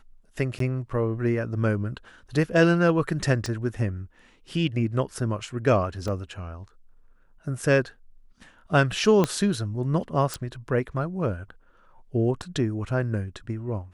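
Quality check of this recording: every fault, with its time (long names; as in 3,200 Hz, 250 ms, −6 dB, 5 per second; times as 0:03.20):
0:00.59–0:00.60: drop-out 13 ms
0:03.46: click −18 dBFS
0:06.08: drop-out 2.3 ms
0:09.24: click −9 dBFS
0:10.34: click
0:12.42: drop-out 4.5 ms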